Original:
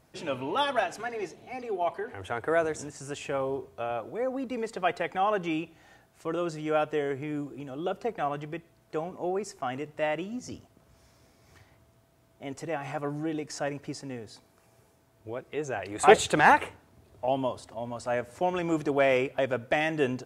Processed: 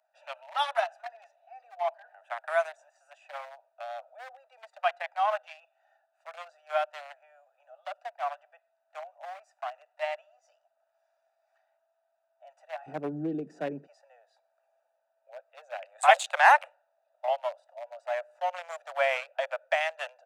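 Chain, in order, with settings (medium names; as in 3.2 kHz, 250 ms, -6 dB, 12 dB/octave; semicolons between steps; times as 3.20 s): local Wiener filter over 41 samples; steep high-pass 610 Hz 96 dB/octave, from 12.86 s 150 Hz, from 13.86 s 570 Hz; trim +1.5 dB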